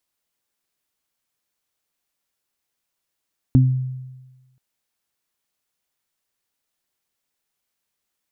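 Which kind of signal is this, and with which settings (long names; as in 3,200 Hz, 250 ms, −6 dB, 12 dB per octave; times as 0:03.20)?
harmonic partials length 1.03 s, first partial 129 Hz, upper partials −2.5 dB, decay 1.22 s, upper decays 0.31 s, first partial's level −9 dB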